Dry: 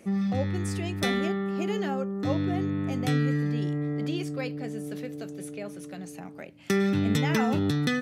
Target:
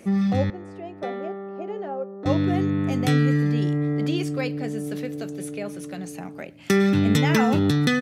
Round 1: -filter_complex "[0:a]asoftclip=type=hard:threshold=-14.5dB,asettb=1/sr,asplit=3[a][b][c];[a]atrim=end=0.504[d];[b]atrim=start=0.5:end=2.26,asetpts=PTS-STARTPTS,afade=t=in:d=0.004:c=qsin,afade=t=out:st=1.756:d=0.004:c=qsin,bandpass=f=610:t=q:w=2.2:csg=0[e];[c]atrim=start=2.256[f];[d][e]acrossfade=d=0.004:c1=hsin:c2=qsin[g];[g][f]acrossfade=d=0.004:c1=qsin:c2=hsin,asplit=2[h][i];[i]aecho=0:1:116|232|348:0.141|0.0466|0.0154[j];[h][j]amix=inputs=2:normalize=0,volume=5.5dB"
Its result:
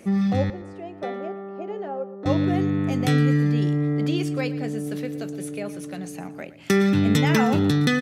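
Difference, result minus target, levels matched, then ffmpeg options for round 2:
echo-to-direct +11.5 dB
-filter_complex "[0:a]asoftclip=type=hard:threshold=-14.5dB,asettb=1/sr,asplit=3[a][b][c];[a]atrim=end=0.504[d];[b]atrim=start=0.5:end=2.26,asetpts=PTS-STARTPTS,afade=t=in:d=0.004:c=qsin,afade=t=out:st=1.756:d=0.004:c=qsin,bandpass=f=610:t=q:w=2.2:csg=0[e];[c]atrim=start=2.256[f];[d][e]acrossfade=d=0.004:c1=hsin:c2=qsin[g];[g][f]acrossfade=d=0.004:c1=qsin:c2=hsin,asplit=2[h][i];[i]aecho=0:1:116|232:0.0376|0.0124[j];[h][j]amix=inputs=2:normalize=0,volume=5.5dB"

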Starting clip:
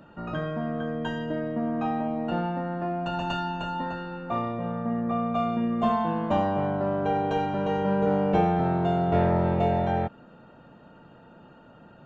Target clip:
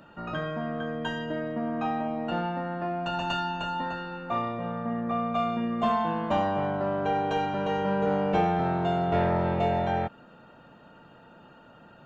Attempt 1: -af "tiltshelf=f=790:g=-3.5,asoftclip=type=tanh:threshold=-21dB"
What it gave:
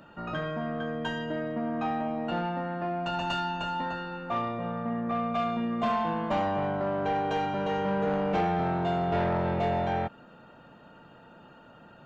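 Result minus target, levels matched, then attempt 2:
soft clip: distortion +14 dB
-af "tiltshelf=f=790:g=-3.5,asoftclip=type=tanh:threshold=-12dB"

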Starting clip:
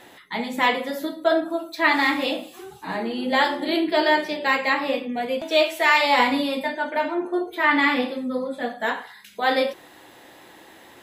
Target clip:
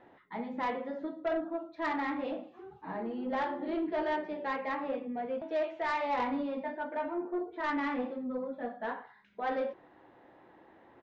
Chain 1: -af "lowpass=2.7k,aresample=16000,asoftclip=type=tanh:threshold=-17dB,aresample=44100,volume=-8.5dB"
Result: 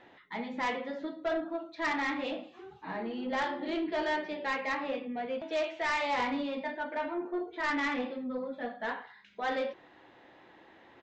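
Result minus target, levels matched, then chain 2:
2000 Hz band +4.0 dB
-af "lowpass=1.3k,aresample=16000,asoftclip=type=tanh:threshold=-17dB,aresample=44100,volume=-8.5dB"

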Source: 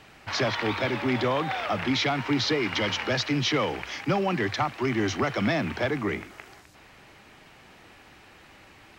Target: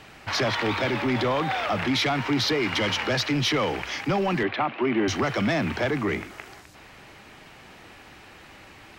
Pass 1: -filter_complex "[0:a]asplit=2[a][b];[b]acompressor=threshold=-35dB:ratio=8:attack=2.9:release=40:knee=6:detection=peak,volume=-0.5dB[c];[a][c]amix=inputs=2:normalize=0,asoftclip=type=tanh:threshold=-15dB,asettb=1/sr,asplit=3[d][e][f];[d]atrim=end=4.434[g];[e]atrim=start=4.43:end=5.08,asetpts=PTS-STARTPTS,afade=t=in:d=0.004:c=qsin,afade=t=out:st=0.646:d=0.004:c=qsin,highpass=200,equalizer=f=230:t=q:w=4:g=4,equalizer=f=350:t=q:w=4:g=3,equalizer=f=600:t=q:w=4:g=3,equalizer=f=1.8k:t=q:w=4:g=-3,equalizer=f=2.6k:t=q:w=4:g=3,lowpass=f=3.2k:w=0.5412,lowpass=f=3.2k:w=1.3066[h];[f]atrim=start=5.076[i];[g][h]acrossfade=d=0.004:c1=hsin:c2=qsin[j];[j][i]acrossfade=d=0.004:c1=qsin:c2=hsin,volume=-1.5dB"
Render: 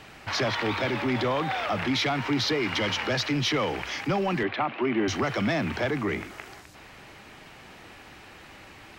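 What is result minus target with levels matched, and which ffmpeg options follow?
compressor: peak gain reduction +10 dB
-filter_complex "[0:a]asplit=2[a][b];[b]acompressor=threshold=-23.5dB:ratio=8:attack=2.9:release=40:knee=6:detection=peak,volume=-0.5dB[c];[a][c]amix=inputs=2:normalize=0,asoftclip=type=tanh:threshold=-15dB,asettb=1/sr,asplit=3[d][e][f];[d]atrim=end=4.434[g];[e]atrim=start=4.43:end=5.08,asetpts=PTS-STARTPTS,afade=t=in:d=0.004:c=qsin,afade=t=out:st=0.646:d=0.004:c=qsin,highpass=200,equalizer=f=230:t=q:w=4:g=4,equalizer=f=350:t=q:w=4:g=3,equalizer=f=600:t=q:w=4:g=3,equalizer=f=1.8k:t=q:w=4:g=-3,equalizer=f=2.6k:t=q:w=4:g=3,lowpass=f=3.2k:w=0.5412,lowpass=f=3.2k:w=1.3066[h];[f]atrim=start=5.076[i];[g][h]acrossfade=d=0.004:c1=hsin:c2=qsin[j];[j][i]acrossfade=d=0.004:c1=qsin:c2=hsin,volume=-1.5dB"

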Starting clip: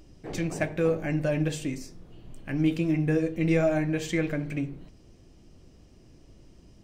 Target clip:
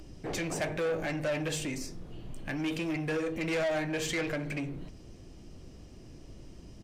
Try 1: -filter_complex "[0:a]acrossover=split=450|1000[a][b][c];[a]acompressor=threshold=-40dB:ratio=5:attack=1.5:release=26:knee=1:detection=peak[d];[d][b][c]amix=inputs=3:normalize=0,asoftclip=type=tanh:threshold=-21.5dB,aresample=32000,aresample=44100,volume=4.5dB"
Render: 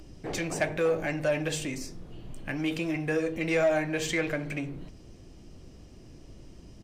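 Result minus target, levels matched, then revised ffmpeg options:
soft clip: distortion -11 dB
-filter_complex "[0:a]acrossover=split=450|1000[a][b][c];[a]acompressor=threshold=-40dB:ratio=5:attack=1.5:release=26:knee=1:detection=peak[d];[d][b][c]amix=inputs=3:normalize=0,asoftclip=type=tanh:threshold=-31.5dB,aresample=32000,aresample=44100,volume=4.5dB"

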